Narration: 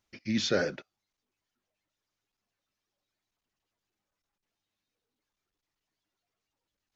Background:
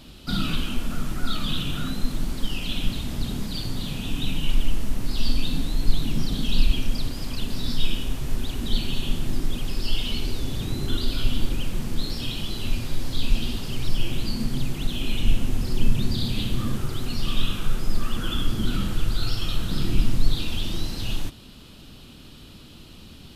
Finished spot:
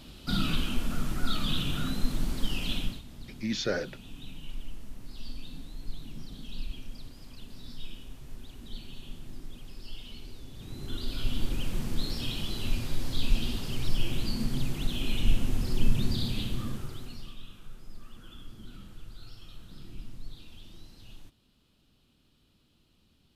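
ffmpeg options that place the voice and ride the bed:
-filter_complex "[0:a]adelay=3150,volume=-2.5dB[a];[1:a]volume=10.5dB,afade=t=out:st=2.72:d=0.3:silence=0.188365,afade=t=in:st=10.54:d=1.2:silence=0.211349,afade=t=out:st=16.1:d=1.27:silence=0.125893[b];[a][b]amix=inputs=2:normalize=0"

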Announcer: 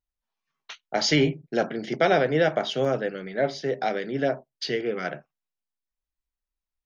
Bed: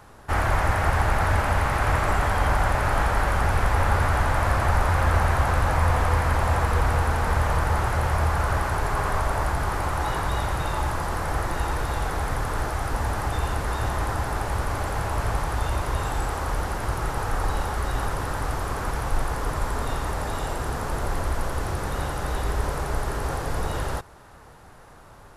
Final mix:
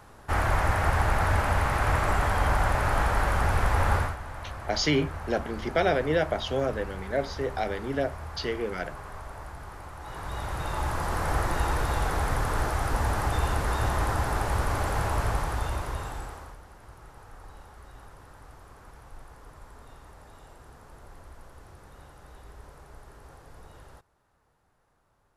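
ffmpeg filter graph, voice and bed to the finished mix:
-filter_complex "[0:a]adelay=3750,volume=-3.5dB[a];[1:a]volume=13.5dB,afade=t=out:st=3.95:d=0.21:silence=0.199526,afade=t=in:st=10.01:d=1.3:silence=0.158489,afade=t=out:st=15.06:d=1.52:silence=0.0841395[b];[a][b]amix=inputs=2:normalize=0"

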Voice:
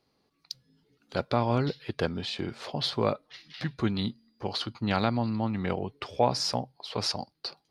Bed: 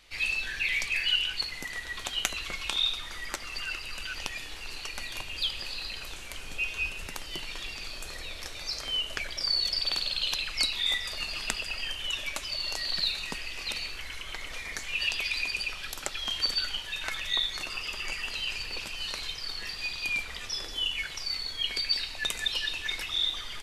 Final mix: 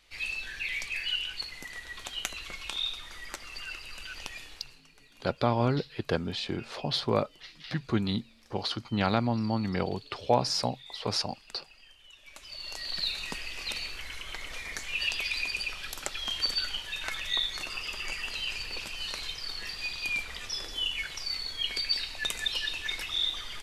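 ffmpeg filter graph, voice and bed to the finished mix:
-filter_complex "[0:a]adelay=4100,volume=0dB[a];[1:a]volume=15.5dB,afade=t=out:st=4.39:d=0.42:silence=0.149624,afade=t=in:st=12.21:d=1.04:silence=0.0944061[b];[a][b]amix=inputs=2:normalize=0"

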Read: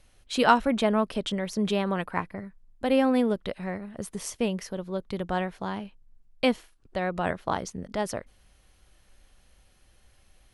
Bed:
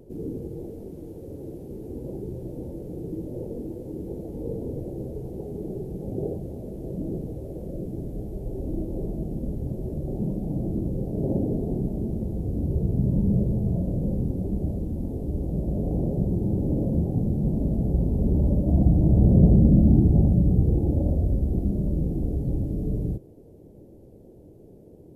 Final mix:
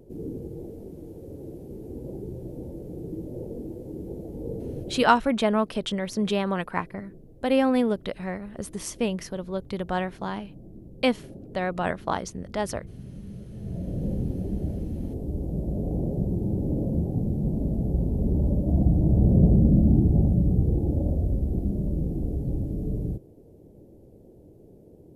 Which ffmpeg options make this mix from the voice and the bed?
-filter_complex "[0:a]adelay=4600,volume=1dB[a];[1:a]volume=14dB,afade=t=out:st=4.88:d=0.32:silence=0.158489,afade=t=in:st=13.5:d=0.58:silence=0.158489[b];[a][b]amix=inputs=2:normalize=0"

